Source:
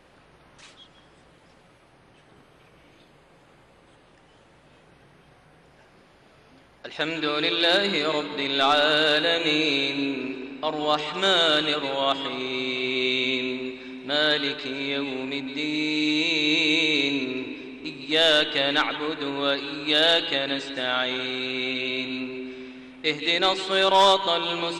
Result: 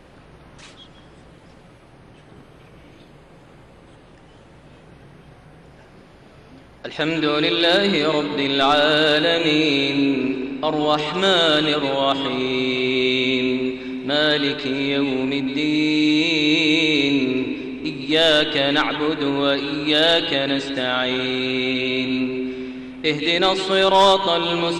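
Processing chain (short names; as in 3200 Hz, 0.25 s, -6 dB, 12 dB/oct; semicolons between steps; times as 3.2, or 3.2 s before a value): low shelf 410 Hz +8 dB; in parallel at -3 dB: limiter -17 dBFS, peak gain reduction 10.5 dB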